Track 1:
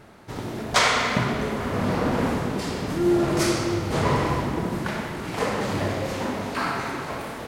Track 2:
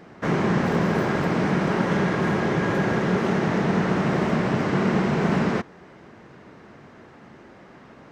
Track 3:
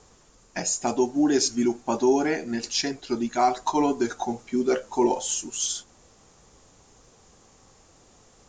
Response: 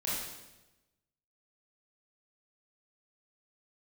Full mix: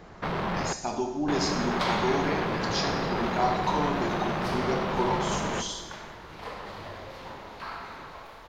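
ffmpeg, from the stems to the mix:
-filter_complex "[0:a]adelay=1050,volume=-14.5dB[a];[1:a]equalizer=f=110:w=0.37:g=9.5,asoftclip=type=hard:threshold=-20.5dB,volume=-5dB,asplit=3[b][c][d];[b]atrim=end=0.73,asetpts=PTS-STARTPTS,afade=t=out:st=0.726:d=0.004:c=hsin[e];[c]atrim=start=0.73:end=1.28,asetpts=PTS-STARTPTS,volume=0[f];[d]atrim=start=1.28,asetpts=PTS-STARTPTS,afade=t=in:d=0.004:c=hsin[g];[e][f][g]concat=n=3:v=0:a=1,asplit=2[h][i];[i]volume=-18.5dB[j];[2:a]bass=f=250:g=14,treble=f=4k:g=2,volume=-11dB,asplit=2[k][l];[l]volume=-4.5dB[m];[3:a]atrim=start_sample=2205[n];[j][m]amix=inputs=2:normalize=0[o];[o][n]afir=irnorm=-1:irlink=0[p];[a][h][k][p]amix=inputs=4:normalize=0,equalizer=f=125:t=o:w=1:g=-6,equalizer=f=250:t=o:w=1:g=-8,equalizer=f=1k:t=o:w=1:g=5,equalizer=f=4k:t=o:w=1:g=7,equalizer=f=8k:t=o:w=1:g=-11"

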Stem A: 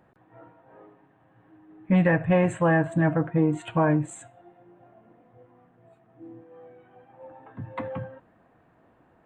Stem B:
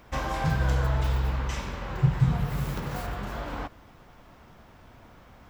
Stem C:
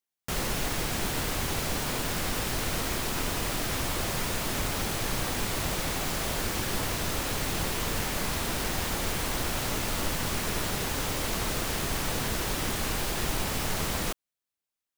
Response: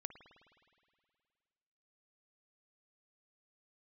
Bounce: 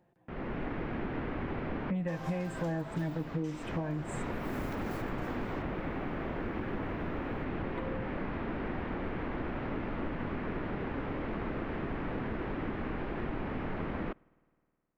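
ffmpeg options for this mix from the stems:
-filter_complex "[0:a]equalizer=f=1.3k:t=o:w=0.59:g=-9,flanger=delay=5.6:depth=1.1:regen=51:speed=0.49:shape=triangular,volume=-5.5dB,asplit=3[a][b][c];[b]volume=-9dB[d];[1:a]highpass=f=260:w=0.5412,highpass=f=260:w=1.3066,adelay=1950,volume=-9dB[e];[2:a]lowpass=f=2.2k:w=0.5412,lowpass=f=2.2k:w=1.3066,equalizer=f=280:t=o:w=1.4:g=8.5,dynaudnorm=f=300:g=3:m=7.5dB,volume=-14.5dB,asplit=2[f][g];[g]volume=-14.5dB[h];[c]apad=whole_len=660230[i];[f][i]sidechaincompress=threshold=-37dB:ratio=8:attack=5.6:release=285[j];[3:a]atrim=start_sample=2205[k];[d][h]amix=inputs=2:normalize=0[l];[l][k]afir=irnorm=-1:irlink=0[m];[a][e][j][m]amix=inputs=4:normalize=0,acompressor=threshold=-30dB:ratio=10"

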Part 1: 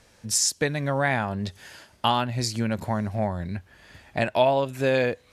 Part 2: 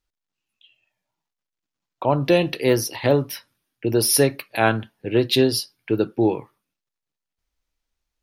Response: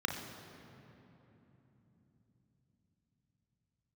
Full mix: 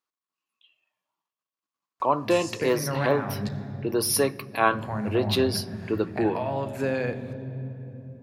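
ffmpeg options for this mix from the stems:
-filter_complex "[0:a]alimiter=limit=-13.5dB:level=0:latency=1:release=196,acrossover=split=230[a][b];[b]acompressor=threshold=-32dB:ratio=2[c];[a][c]amix=inputs=2:normalize=0,adelay=2000,volume=0dB,asplit=3[d][e][f];[d]atrim=end=3.49,asetpts=PTS-STARTPTS,afade=t=out:st=3.486:d=0.004:c=hsin[g];[e]atrim=start=3.49:end=4.71,asetpts=PTS-STARTPTS,volume=0[h];[f]atrim=start=4.71,asetpts=PTS-STARTPTS,afade=t=in:d=0.004:c=hsin[i];[g][h][i]concat=n=3:v=0:a=1,asplit=2[j][k];[k]volume=-9.5dB[l];[1:a]highpass=220,equalizer=f=1.1k:t=o:w=0.27:g=14.5,volume=-5.5dB,asplit=3[m][n][o];[n]volume=-21dB[p];[o]apad=whole_len=323245[q];[j][q]sidechaincompress=threshold=-26dB:ratio=8:attack=32:release=488[r];[2:a]atrim=start_sample=2205[s];[l][p]amix=inputs=2:normalize=0[t];[t][s]afir=irnorm=-1:irlink=0[u];[r][m][u]amix=inputs=3:normalize=0"

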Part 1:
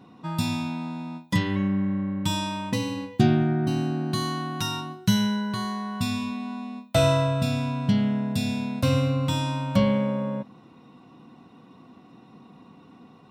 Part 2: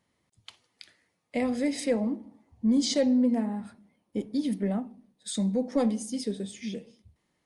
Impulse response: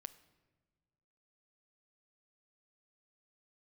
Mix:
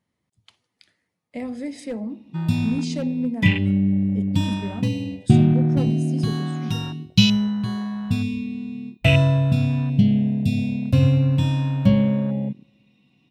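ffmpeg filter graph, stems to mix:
-filter_complex "[0:a]afwtdn=0.0316,highshelf=f=1.8k:t=q:w=3:g=11,adelay=2100,volume=-2.5dB,asplit=2[a][b];[b]volume=-8.5dB[c];[1:a]lowshelf=f=97:g=-9,aeval=exprs='0.119*(abs(mod(val(0)/0.119+3,4)-2)-1)':c=same,volume=-5dB[d];[2:a]atrim=start_sample=2205[e];[c][e]afir=irnorm=-1:irlink=0[f];[a][d][f]amix=inputs=3:normalize=0,bass=f=250:g=9,treble=f=4k:g=-2"

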